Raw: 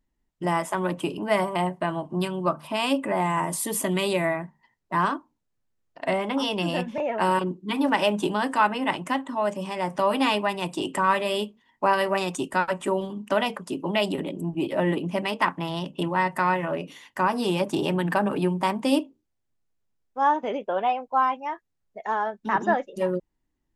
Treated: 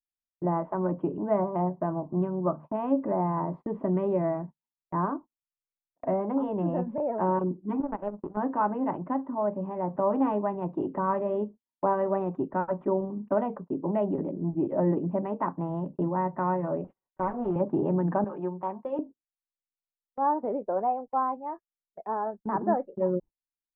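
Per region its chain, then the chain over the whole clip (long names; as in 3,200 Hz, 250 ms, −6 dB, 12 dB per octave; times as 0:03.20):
0:07.80–0:08.37: low-pass filter 2,000 Hz 6 dB per octave + power curve on the samples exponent 2
0:16.84–0:17.56: lower of the sound and its delayed copy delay 5.3 ms + low-shelf EQ 180 Hz −10 dB
0:18.24–0:18.99: high-pass filter 1,100 Hz 6 dB per octave + comb filter 5.6 ms
whole clip: Bessel low-pass filter 730 Hz, order 4; noise gate −40 dBFS, range −32 dB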